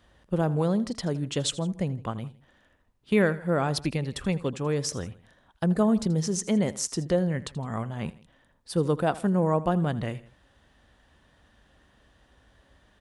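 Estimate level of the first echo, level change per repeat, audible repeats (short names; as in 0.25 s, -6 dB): -18.0 dB, -6.0 dB, 2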